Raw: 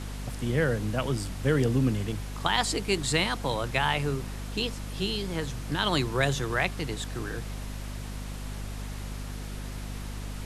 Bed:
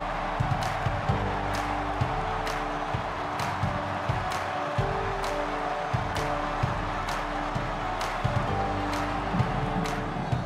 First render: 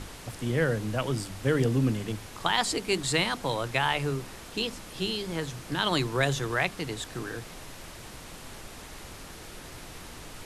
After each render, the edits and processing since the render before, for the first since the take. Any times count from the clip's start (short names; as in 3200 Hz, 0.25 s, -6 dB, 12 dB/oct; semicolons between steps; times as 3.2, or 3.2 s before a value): notches 50/100/150/200/250 Hz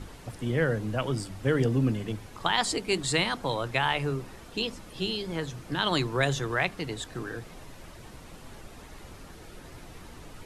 denoiser 8 dB, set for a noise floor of -45 dBFS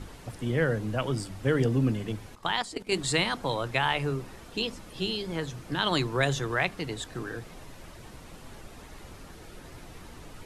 2.35–2.92 level quantiser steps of 14 dB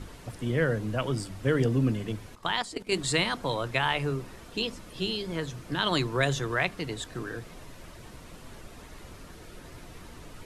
notch 810 Hz, Q 14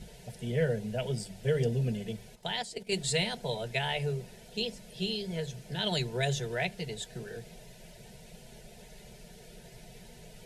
fixed phaser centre 310 Hz, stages 6; notch comb 270 Hz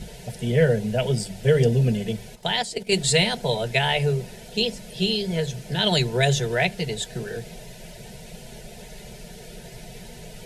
gain +10 dB